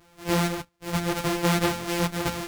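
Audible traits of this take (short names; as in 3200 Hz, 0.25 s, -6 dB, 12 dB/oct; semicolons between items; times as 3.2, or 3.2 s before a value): a buzz of ramps at a fixed pitch in blocks of 256 samples; random-step tremolo; a shimmering, thickened sound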